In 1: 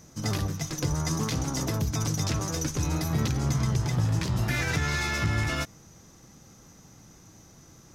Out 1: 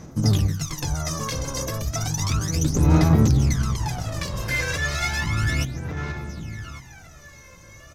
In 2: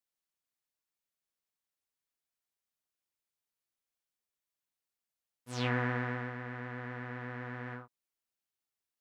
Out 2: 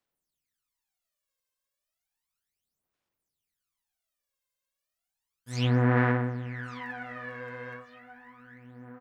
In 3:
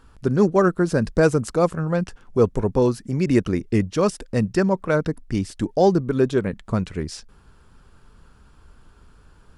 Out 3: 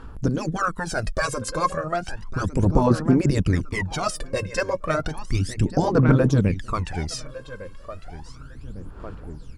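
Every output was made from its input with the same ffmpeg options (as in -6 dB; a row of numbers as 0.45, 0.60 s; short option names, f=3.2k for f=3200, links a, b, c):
-filter_complex "[0:a]afftfilt=real='re*lt(hypot(re,im),0.631)':imag='im*lt(hypot(re,im),0.631)':win_size=1024:overlap=0.75,asplit=2[a][b];[b]adelay=1154,lowpass=f=4.3k:p=1,volume=-13dB,asplit=2[c][d];[d]adelay=1154,lowpass=f=4.3k:p=1,volume=0.36,asplit=2[e][f];[f]adelay=1154,lowpass=f=4.3k:p=1,volume=0.36,asplit=2[g][h];[h]adelay=1154,lowpass=f=4.3k:p=1,volume=0.36[i];[a][c][e][g][i]amix=inputs=5:normalize=0,aphaser=in_gain=1:out_gain=1:delay=1.9:decay=0.76:speed=0.33:type=sinusoidal"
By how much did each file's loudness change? +5.0, +8.5, -2.0 LU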